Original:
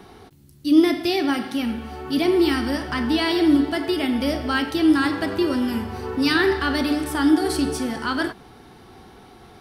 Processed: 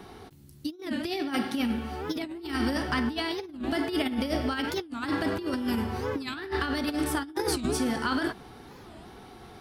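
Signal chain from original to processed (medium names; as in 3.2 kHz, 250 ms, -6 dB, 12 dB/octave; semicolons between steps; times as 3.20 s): compressor with a negative ratio -24 dBFS, ratio -0.5; warped record 45 rpm, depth 250 cents; trim -5 dB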